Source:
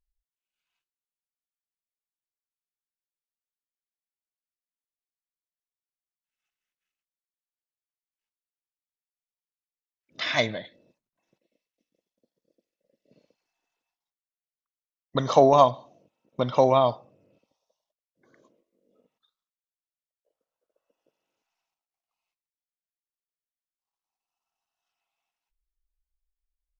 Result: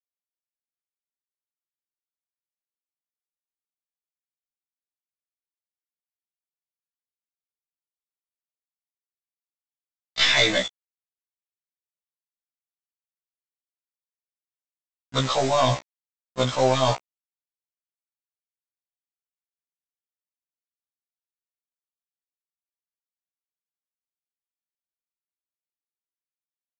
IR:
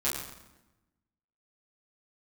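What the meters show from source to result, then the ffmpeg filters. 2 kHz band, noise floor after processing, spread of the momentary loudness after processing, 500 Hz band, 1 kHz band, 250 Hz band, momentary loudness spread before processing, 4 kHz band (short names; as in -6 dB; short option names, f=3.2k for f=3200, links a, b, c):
+7.5 dB, under -85 dBFS, 14 LU, -2.5 dB, -2.5 dB, -0.5 dB, 14 LU, +10.5 dB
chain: -af "lowpass=f=4.9k:w=0.5412,lowpass=f=4.9k:w=1.3066,anlmdn=0.398,areverse,acompressor=threshold=-32dB:ratio=5,areverse,crystalizer=i=7.5:c=0,aeval=exprs='0.2*(cos(1*acos(clip(val(0)/0.2,-1,1)))-cos(1*PI/2))+0.00794*(cos(3*acos(clip(val(0)/0.2,-1,1)))-cos(3*PI/2))+0.0447*(cos(5*acos(clip(val(0)/0.2,-1,1)))-cos(5*PI/2))+0.0158*(cos(6*acos(clip(val(0)/0.2,-1,1)))-cos(6*PI/2))+0.002*(cos(8*acos(clip(val(0)/0.2,-1,1)))-cos(8*PI/2))':c=same,aresample=16000,acrusher=bits=5:mix=0:aa=0.000001,aresample=44100,afftfilt=real='re*1.73*eq(mod(b,3),0)':imag='im*1.73*eq(mod(b,3),0)':win_size=2048:overlap=0.75,volume=7.5dB"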